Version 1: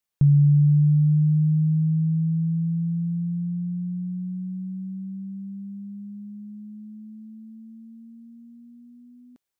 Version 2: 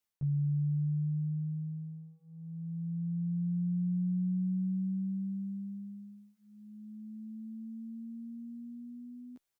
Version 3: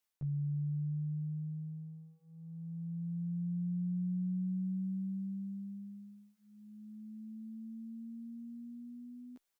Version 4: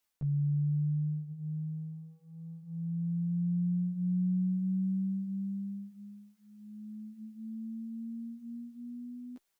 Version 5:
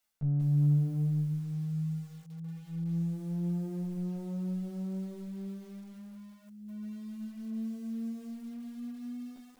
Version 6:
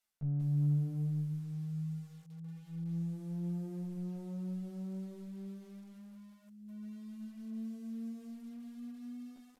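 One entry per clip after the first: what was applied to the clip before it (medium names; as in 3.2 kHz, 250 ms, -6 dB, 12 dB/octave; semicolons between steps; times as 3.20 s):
peak limiter -19 dBFS, peak gain reduction 7.5 dB; reverse; compression 6:1, threshold -32 dBFS, peak gain reduction 10 dB; reverse; endless flanger 11.7 ms +0.4 Hz; trim +2.5 dB
peaking EQ 110 Hz -6.5 dB 2.3 oct; trim +1 dB
flange 0.76 Hz, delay 2.9 ms, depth 4.6 ms, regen -47%; trim +8.5 dB
single-diode clipper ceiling -34.5 dBFS; reverberation RT60 0.20 s, pre-delay 5 ms, DRR 8 dB; bit-crushed delay 185 ms, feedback 35%, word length 9-bit, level -7 dB
resampled via 32 kHz; trim -5 dB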